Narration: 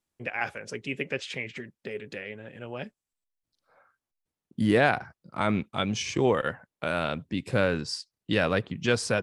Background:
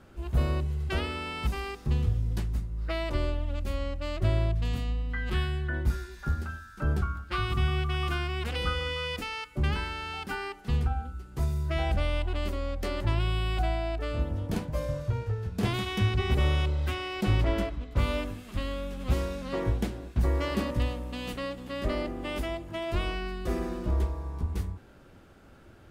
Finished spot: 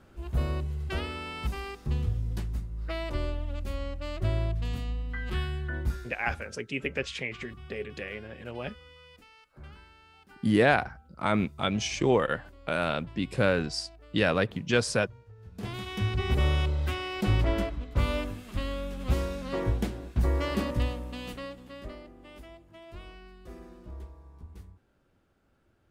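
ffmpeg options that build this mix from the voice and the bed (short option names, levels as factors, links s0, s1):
-filter_complex "[0:a]adelay=5850,volume=1[s0];[1:a]volume=7.94,afade=t=out:st=5.85:d=0.74:silence=0.125893,afade=t=in:st=15.34:d=1.07:silence=0.0944061,afade=t=out:st=20.83:d=1.17:silence=0.16788[s1];[s0][s1]amix=inputs=2:normalize=0"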